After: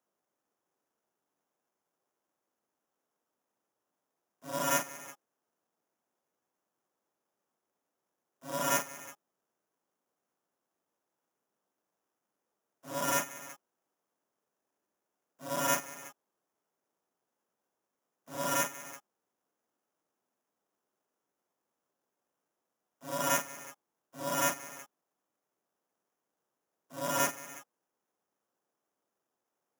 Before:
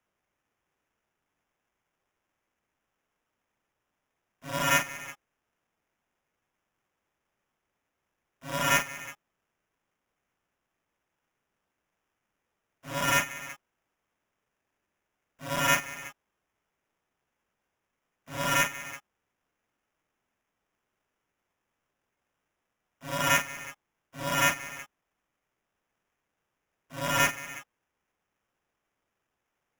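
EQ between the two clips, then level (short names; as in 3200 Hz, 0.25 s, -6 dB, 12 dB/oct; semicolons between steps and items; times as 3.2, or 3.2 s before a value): HPF 240 Hz 12 dB/oct; bell 2300 Hz -13 dB 1.4 oct; 0.0 dB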